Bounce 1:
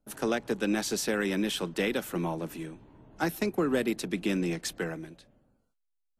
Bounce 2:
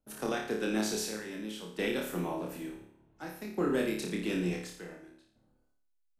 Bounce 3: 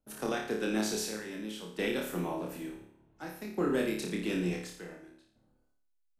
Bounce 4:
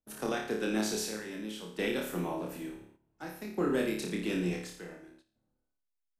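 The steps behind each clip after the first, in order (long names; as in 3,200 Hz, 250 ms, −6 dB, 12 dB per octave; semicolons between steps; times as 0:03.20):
square-wave tremolo 0.56 Hz, depth 65%, duty 60%; on a send: flutter between parallel walls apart 4.8 metres, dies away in 0.57 s; on the sum: level −5.5 dB
no processing that can be heard
noise gate −59 dBFS, range −10 dB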